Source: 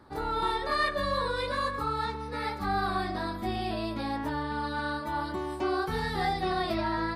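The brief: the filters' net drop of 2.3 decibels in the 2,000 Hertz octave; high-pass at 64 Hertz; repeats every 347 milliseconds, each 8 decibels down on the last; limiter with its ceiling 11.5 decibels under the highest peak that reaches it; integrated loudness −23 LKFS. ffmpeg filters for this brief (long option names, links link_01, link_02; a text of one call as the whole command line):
ffmpeg -i in.wav -af "highpass=64,equalizer=frequency=2000:width_type=o:gain=-3,alimiter=level_in=5.5dB:limit=-24dB:level=0:latency=1,volume=-5.5dB,aecho=1:1:347|694|1041|1388|1735:0.398|0.159|0.0637|0.0255|0.0102,volume=13.5dB" out.wav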